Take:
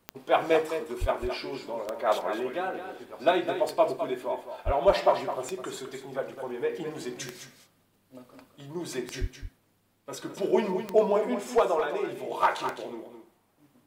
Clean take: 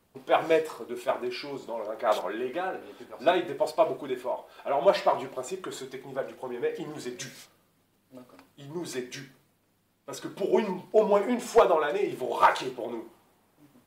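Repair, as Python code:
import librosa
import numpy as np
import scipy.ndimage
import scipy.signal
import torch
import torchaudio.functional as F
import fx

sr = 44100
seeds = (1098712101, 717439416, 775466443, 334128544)

y = fx.fix_declick_ar(x, sr, threshold=10.0)
y = fx.highpass(y, sr, hz=140.0, slope=24, at=(1.0, 1.12), fade=0.02)
y = fx.highpass(y, sr, hz=140.0, slope=24, at=(4.65, 4.77), fade=0.02)
y = fx.highpass(y, sr, hz=140.0, slope=24, at=(9.2, 9.32), fade=0.02)
y = fx.fix_echo_inverse(y, sr, delay_ms=210, level_db=-9.0)
y = fx.gain(y, sr, db=fx.steps((0.0, 0.0), (11.12, 3.5)))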